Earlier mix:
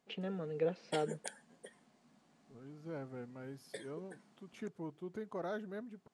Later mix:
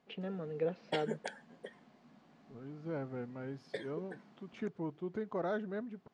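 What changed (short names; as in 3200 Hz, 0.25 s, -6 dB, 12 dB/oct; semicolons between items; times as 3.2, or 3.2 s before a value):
second voice +5.0 dB; background +6.5 dB; master: add air absorption 150 m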